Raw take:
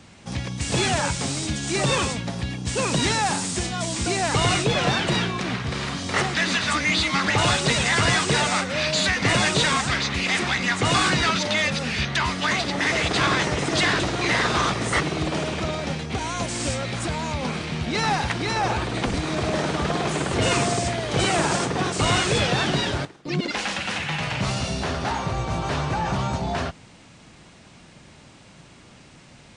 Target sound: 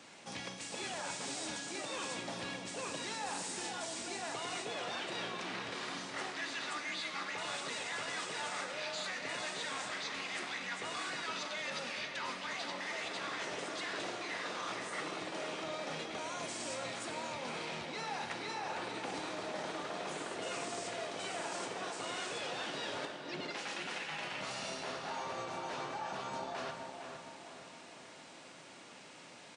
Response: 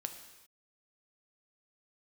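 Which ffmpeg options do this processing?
-filter_complex "[0:a]highpass=350,areverse,acompressor=threshold=-36dB:ratio=6,areverse,asplit=2[a][b];[b]adelay=462,lowpass=f=2.5k:p=1,volume=-6dB,asplit=2[c][d];[d]adelay=462,lowpass=f=2.5k:p=1,volume=0.52,asplit=2[e][f];[f]adelay=462,lowpass=f=2.5k:p=1,volume=0.52,asplit=2[g][h];[h]adelay=462,lowpass=f=2.5k:p=1,volume=0.52,asplit=2[i][j];[j]adelay=462,lowpass=f=2.5k:p=1,volume=0.52,asplit=2[k][l];[l]adelay=462,lowpass=f=2.5k:p=1,volume=0.52[m];[a][c][e][g][i][k][m]amix=inputs=7:normalize=0[n];[1:a]atrim=start_sample=2205[o];[n][o]afir=irnorm=-1:irlink=0,volume=-2dB"

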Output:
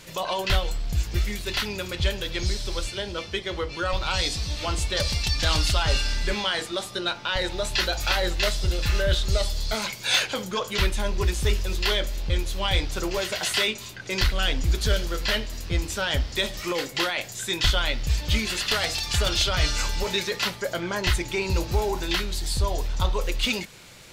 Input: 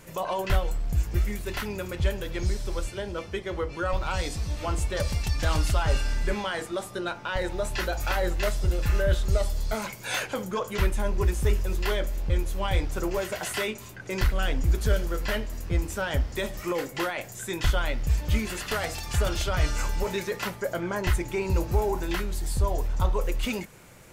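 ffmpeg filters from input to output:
-af "equalizer=f=4k:w=0.89:g=13.5"

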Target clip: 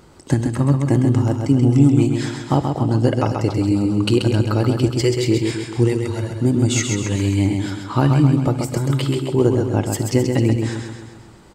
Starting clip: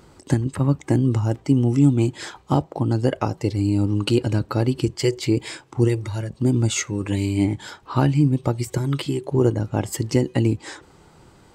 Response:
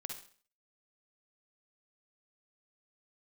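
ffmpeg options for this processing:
-filter_complex "[0:a]aecho=1:1:132|264|396|528|660|792|924:0.562|0.298|0.158|0.0837|0.0444|0.0235|0.0125,asplit=2[a][b];[1:a]atrim=start_sample=2205[c];[b][c]afir=irnorm=-1:irlink=0,volume=-8dB[d];[a][d]amix=inputs=2:normalize=0"

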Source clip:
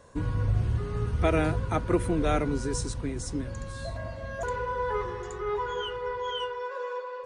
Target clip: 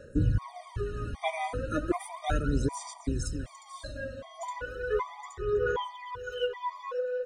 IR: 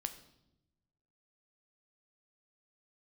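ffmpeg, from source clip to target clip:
-filter_complex "[0:a]aecho=1:1:256:0.0794,asplit=2[a][b];[1:a]atrim=start_sample=2205,lowshelf=f=170:g=-9[c];[b][c]afir=irnorm=-1:irlink=0,volume=1dB[d];[a][d]amix=inputs=2:normalize=0,aphaser=in_gain=1:out_gain=1:delay=4:decay=0.68:speed=0.35:type=sinusoidal,afftfilt=real='re*gt(sin(2*PI*1.3*pts/sr)*(1-2*mod(floor(b*sr/1024/620),2)),0)':imag='im*gt(sin(2*PI*1.3*pts/sr)*(1-2*mod(floor(b*sr/1024/620),2)),0)':win_size=1024:overlap=0.75,volume=-7dB"

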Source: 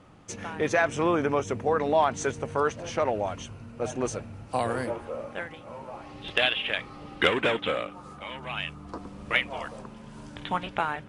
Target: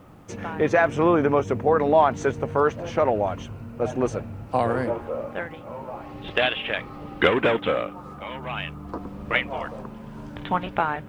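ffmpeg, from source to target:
-af "lowpass=f=1.5k:p=1,acrusher=bits=11:mix=0:aa=0.000001,volume=6dB"

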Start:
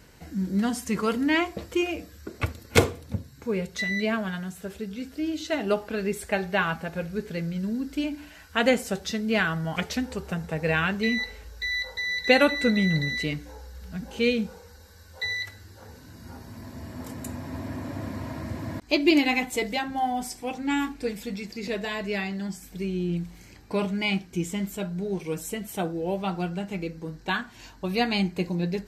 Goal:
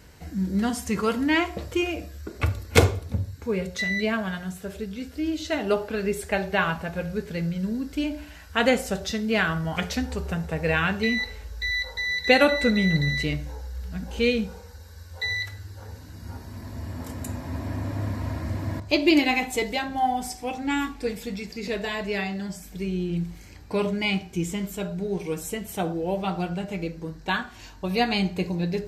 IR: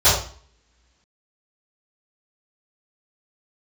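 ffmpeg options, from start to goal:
-filter_complex "[0:a]asplit=2[a][b];[1:a]atrim=start_sample=2205,lowshelf=f=110:g=6.5[c];[b][c]afir=irnorm=-1:irlink=0,volume=-33dB[d];[a][d]amix=inputs=2:normalize=0,volume=1dB"

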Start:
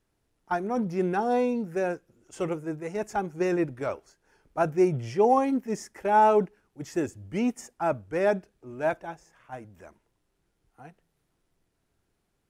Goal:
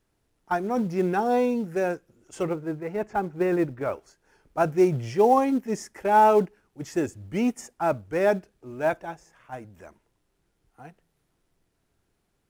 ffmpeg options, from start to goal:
-filter_complex "[0:a]asettb=1/sr,asplit=3[a][b][c];[a]atrim=end=2.434[d];[b]atrim=start=2.43:end=3.93,asetpts=PTS-STARTPTS,afade=t=in:d=0.004:c=qsin,afade=t=out:st=1.496:d=0.004:c=qsin,lowpass=2.4k[e];[c]atrim=start=3.926[f];[d][e]acrossfade=d=0.004:c1=hsin:c2=qsin[g];[g][f]acrossfade=d=0.004:c1=qsin:c2=hsin,asplit=2[h][i];[i]acrusher=bits=4:mode=log:mix=0:aa=0.000001,volume=-11dB[j];[h][j]amix=inputs=2:normalize=0"

